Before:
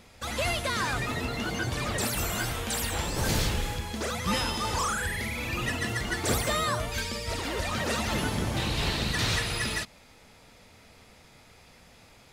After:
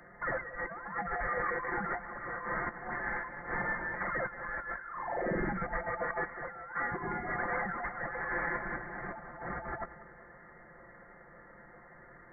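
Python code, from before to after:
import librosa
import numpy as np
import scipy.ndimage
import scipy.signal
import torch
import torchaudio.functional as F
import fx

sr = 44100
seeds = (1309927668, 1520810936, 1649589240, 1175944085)

p1 = scipy.signal.sosfilt(scipy.signal.butter(4, 690.0, 'highpass', fs=sr, output='sos'), x)
p2 = p1 + 0.71 * np.pad(p1, (int(5.8 * sr / 1000.0), 0))[:len(p1)]
p3 = fx.over_compress(p2, sr, threshold_db=-34.0, ratio=-0.5)
p4 = p3 + fx.echo_feedback(p3, sr, ms=188, feedback_pct=59, wet_db=-17, dry=0)
y = fx.freq_invert(p4, sr, carrier_hz=2600)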